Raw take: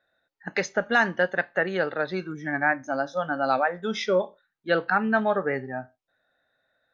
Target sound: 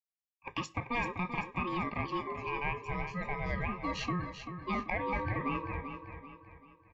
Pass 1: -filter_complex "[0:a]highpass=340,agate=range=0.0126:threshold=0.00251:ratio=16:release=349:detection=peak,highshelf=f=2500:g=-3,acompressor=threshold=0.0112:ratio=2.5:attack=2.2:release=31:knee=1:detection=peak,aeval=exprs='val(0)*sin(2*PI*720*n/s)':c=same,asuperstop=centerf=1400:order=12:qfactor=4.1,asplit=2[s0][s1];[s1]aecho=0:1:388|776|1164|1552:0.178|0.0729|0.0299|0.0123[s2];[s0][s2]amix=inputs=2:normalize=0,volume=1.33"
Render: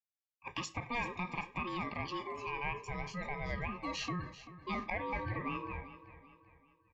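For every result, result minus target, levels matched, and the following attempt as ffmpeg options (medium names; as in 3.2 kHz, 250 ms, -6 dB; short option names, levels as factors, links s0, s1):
compression: peak gain reduction +5 dB; echo-to-direct -6 dB; 4 kHz band +3.5 dB
-filter_complex "[0:a]highpass=340,agate=range=0.0126:threshold=0.00251:ratio=16:release=349:detection=peak,highshelf=f=2500:g=-3,acompressor=threshold=0.0251:ratio=2.5:attack=2.2:release=31:knee=1:detection=peak,aeval=exprs='val(0)*sin(2*PI*720*n/s)':c=same,asuperstop=centerf=1400:order=12:qfactor=4.1,asplit=2[s0][s1];[s1]aecho=0:1:388|776|1164|1552:0.178|0.0729|0.0299|0.0123[s2];[s0][s2]amix=inputs=2:normalize=0,volume=1.33"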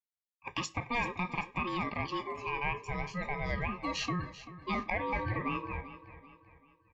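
echo-to-direct -6 dB; 4 kHz band +3.5 dB
-filter_complex "[0:a]highpass=340,agate=range=0.0126:threshold=0.00251:ratio=16:release=349:detection=peak,highshelf=f=2500:g=-3,acompressor=threshold=0.0251:ratio=2.5:attack=2.2:release=31:knee=1:detection=peak,aeval=exprs='val(0)*sin(2*PI*720*n/s)':c=same,asuperstop=centerf=1400:order=12:qfactor=4.1,asplit=2[s0][s1];[s1]aecho=0:1:388|776|1164|1552|1940:0.355|0.145|0.0596|0.0245|0.01[s2];[s0][s2]amix=inputs=2:normalize=0,volume=1.33"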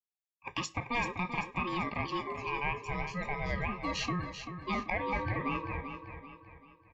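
4 kHz band +3.5 dB
-filter_complex "[0:a]highpass=340,agate=range=0.0126:threshold=0.00251:ratio=16:release=349:detection=peak,highshelf=f=2500:g=-12.5,acompressor=threshold=0.0251:ratio=2.5:attack=2.2:release=31:knee=1:detection=peak,aeval=exprs='val(0)*sin(2*PI*720*n/s)':c=same,asuperstop=centerf=1400:order=12:qfactor=4.1,asplit=2[s0][s1];[s1]aecho=0:1:388|776|1164|1552|1940:0.355|0.145|0.0596|0.0245|0.01[s2];[s0][s2]amix=inputs=2:normalize=0,volume=1.33"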